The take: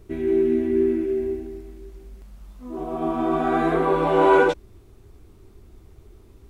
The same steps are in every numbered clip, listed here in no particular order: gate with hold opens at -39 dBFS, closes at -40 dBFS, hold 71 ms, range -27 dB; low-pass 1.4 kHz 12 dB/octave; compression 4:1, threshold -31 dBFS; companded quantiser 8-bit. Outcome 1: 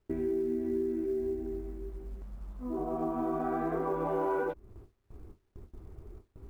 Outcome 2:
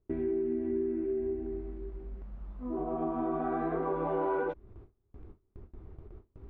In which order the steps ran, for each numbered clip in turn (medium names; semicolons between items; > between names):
gate with hold > low-pass > companded quantiser > compression; companded quantiser > low-pass > gate with hold > compression